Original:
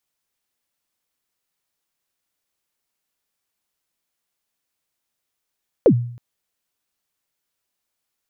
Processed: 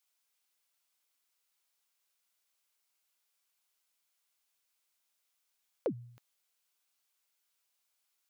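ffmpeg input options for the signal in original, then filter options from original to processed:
-f lavfi -i "aevalsrc='0.501*pow(10,-3*t/0.59)*sin(2*PI*(570*0.076/log(120/570)*(exp(log(120/570)*min(t,0.076)/0.076)-1)+120*max(t-0.076,0)))':d=0.32:s=44100"
-af "highpass=f=1.1k:p=1,bandreject=f=1.8k:w=13,alimiter=limit=-24dB:level=0:latency=1:release=340"

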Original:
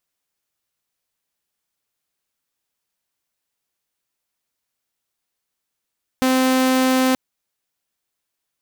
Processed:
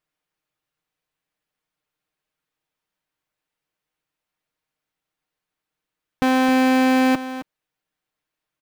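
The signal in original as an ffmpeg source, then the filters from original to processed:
-f lavfi -i "aevalsrc='0.251*(2*mod(259*t,1)-1)':d=0.93:s=44100"
-af "bass=f=250:g=1,treble=f=4k:g=-11,aecho=1:1:6.5:0.48,aecho=1:1:266:0.237"

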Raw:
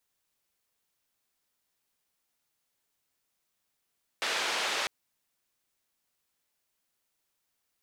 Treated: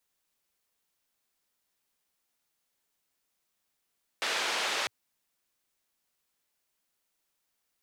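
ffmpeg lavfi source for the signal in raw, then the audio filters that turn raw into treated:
-f lavfi -i "anoisesrc=c=white:d=0.65:r=44100:seed=1,highpass=f=450,lowpass=f=3800,volume=-18.4dB"
-af "equalizer=f=110:t=o:w=0.32:g=-8.5"

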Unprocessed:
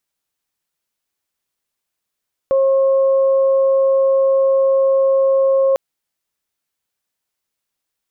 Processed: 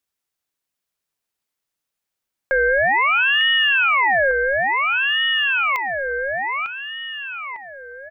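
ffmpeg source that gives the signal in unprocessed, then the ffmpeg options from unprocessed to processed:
-f lavfi -i "aevalsrc='0.282*sin(2*PI*539*t)+0.0376*sin(2*PI*1078*t)':d=3.25:s=44100"
-filter_complex "[0:a]asplit=2[a][b];[b]adelay=901,lowpass=f=960:p=1,volume=-3.5dB,asplit=2[c][d];[d]adelay=901,lowpass=f=960:p=1,volume=0.54,asplit=2[e][f];[f]adelay=901,lowpass=f=960:p=1,volume=0.54,asplit=2[g][h];[h]adelay=901,lowpass=f=960:p=1,volume=0.54,asplit=2[i][j];[j]adelay=901,lowpass=f=960:p=1,volume=0.54,asplit=2[k][l];[l]adelay=901,lowpass=f=960:p=1,volume=0.54,asplit=2[m][n];[n]adelay=901,lowpass=f=960:p=1,volume=0.54[o];[a][c][e][g][i][k][m][o]amix=inputs=8:normalize=0,aeval=exprs='val(0)*sin(2*PI*1700*n/s+1700*0.4/0.57*sin(2*PI*0.57*n/s))':c=same"

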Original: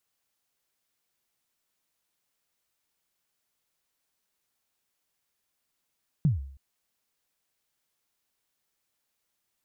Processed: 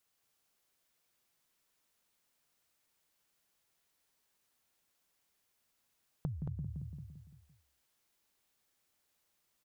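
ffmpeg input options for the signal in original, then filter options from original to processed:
-f lavfi -i "aevalsrc='0.15*pow(10,-3*t/0.59)*sin(2*PI*(170*0.144/log(68/170)*(exp(log(68/170)*min(t,0.144)/0.144)-1)+68*max(t-0.144,0)))':d=0.32:s=44100"
-filter_complex "[0:a]asplit=2[a][b];[b]adelay=170,lowpass=f=2k:p=1,volume=-6dB,asplit=2[c][d];[d]adelay=170,lowpass=f=2k:p=1,volume=0.48,asplit=2[e][f];[f]adelay=170,lowpass=f=2k:p=1,volume=0.48,asplit=2[g][h];[h]adelay=170,lowpass=f=2k:p=1,volume=0.48,asplit=2[i][j];[j]adelay=170,lowpass=f=2k:p=1,volume=0.48,asplit=2[k][l];[l]adelay=170,lowpass=f=2k:p=1,volume=0.48[m];[c][e][g][i][k][m]amix=inputs=6:normalize=0[n];[a][n]amix=inputs=2:normalize=0,acompressor=threshold=-37dB:ratio=6,asplit=2[o][p];[p]aecho=0:1:225:0.531[q];[o][q]amix=inputs=2:normalize=0"

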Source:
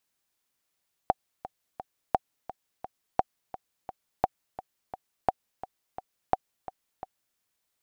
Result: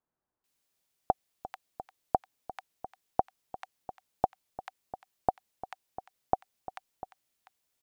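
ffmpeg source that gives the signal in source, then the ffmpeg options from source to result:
-f lavfi -i "aevalsrc='pow(10,(-8-15.5*gte(mod(t,3*60/172),60/172))/20)*sin(2*PI*757*mod(t,60/172))*exp(-6.91*mod(t,60/172)/0.03)':d=6.27:s=44100"
-filter_complex "[0:a]acrossover=split=1400[a][b];[b]adelay=440[c];[a][c]amix=inputs=2:normalize=0"

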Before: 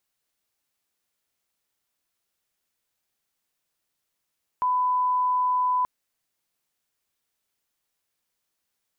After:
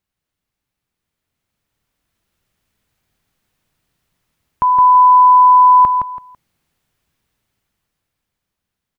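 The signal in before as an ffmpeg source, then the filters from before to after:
-f lavfi -i "sine=f=1000:d=1.23:r=44100,volume=-1.94dB"
-af "bass=f=250:g=13,treble=f=4k:g=-7,dynaudnorm=f=280:g=13:m=11dB,aecho=1:1:166|332|498:0.562|0.146|0.038"

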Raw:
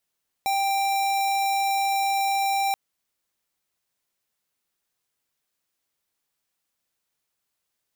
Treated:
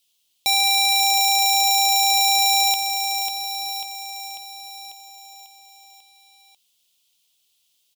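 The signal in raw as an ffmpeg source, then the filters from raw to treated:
-f lavfi -i "aevalsrc='0.0668*(2*lt(mod(787*t,1),0.5)-1)':d=2.28:s=44100"
-filter_complex "[0:a]highshelf=f=2.3k:t=q:w=3:g=11,asplit=2[a][b];[b]aecho=0:1:544|1088|1632|2176|2720|3264|3808:0.473|0.27|0.154|0.0876|0.0499|0.0285|0.0162[c];[a][c]amix=inputs=2:normalize=0"

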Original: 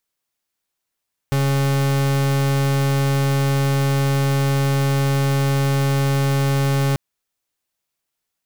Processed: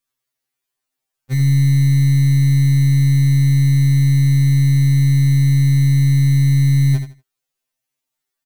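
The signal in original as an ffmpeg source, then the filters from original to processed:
-f lavfi -i "aevalsrc='0.126*(2*lt(mod(138*t,1),0.42)-1)':d=5.64:s=44100"
-filter_complex "[0:a]asplit=2[a][b];[b]aecho=0:1:80|160|240:0.376|0.0864|0.0199[c];[a][c]amix=inputs=2:normalize=0,afftfilt=real='re*2.45*eq(mod(b,6),0)':imag='im*2.45*eq(mod(b,6),0)':win_size=2048:overlap=0.75"

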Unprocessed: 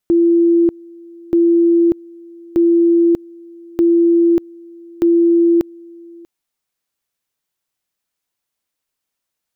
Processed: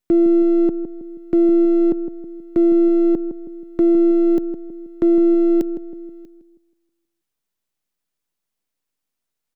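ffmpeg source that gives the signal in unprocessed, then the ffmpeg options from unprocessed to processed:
-f lavfi -i "aevalsrc='pow(10,(-8.5-26*gte(mod(t,1.23),0.59))/20)*sin(2*PI*339*t)':d=6.15:s=44100"
-filter_complex "[0:a]highpass=93,acrossover=split=420[a][b];[b]aeval=exprs='max(val(0),0)':c=same[c];[a][c]amix=inputs=2:normalize=0,asplit=2[d][e];[e]adelay=160,lowpass=f=800:p=1,volume=-8dB,asplit=2[f][g];[g]adelay=160,lowpass=f=800:p=1,volume=0.48,asplit=2[h][i];[i]adelay=160,lowpass=f=800:p=1,volume=0.48,asplit=2[j][k];[k]adelay=160,lowpass=f=800:p=1,volume=0.48,asplit=2[l][m];[m]adelay=160,lowpass=f=800:p=1,volume=0.48,asplit=2[n][o];[o]adelay=160,lowpass=f=800:p=1,volume=0.48[p];[d][f][h][j][l][n][p]amix=inputs=7:normalize=0"

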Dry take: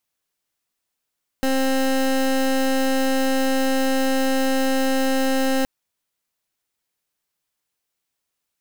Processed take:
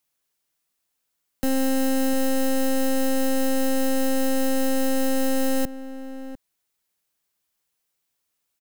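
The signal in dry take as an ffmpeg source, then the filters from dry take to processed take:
-f lavfi -i "aevalsrc='0.106*(2*lt(mod(265*t,1),0.23)-1)':d=4.22:s=44100"
-filter_complex "[0:a]highshelf=f=7.3k:g=4,acrossover=split=190|460|7300[a][b][c][d];[c]alimiter=level_in=1.5dB:limit=-24dB:level=0:latency=1,volume=-1.5dB[e];[a][b][e][d]amix=inputs=4:normalize=0,asplit=2[f][g];[g]adelay=699.7,volume=-13dB,highshelf=f=4k:g=-15.7[h];[f][h]amix=inputs=2:normalize=0"

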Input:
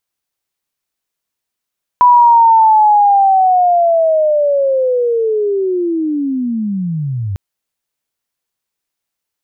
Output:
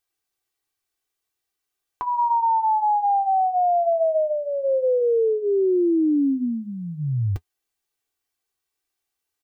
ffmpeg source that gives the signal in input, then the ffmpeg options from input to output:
-f lavfi -i "aevalsrc='pow(10,(-3.5-13*t/5.35)/20)*sin(2*PI*(990*t-898*t*t/(2*5.35)))':d=5.35:s=44100"
-af "aecho=1:1:2.6:0.7,alimiter=limit=-13dB:level=0:latency=1:release=164,flanger=delay=5.3:depth=9.3:regen=-50:speed=0.4:shape=triangular"

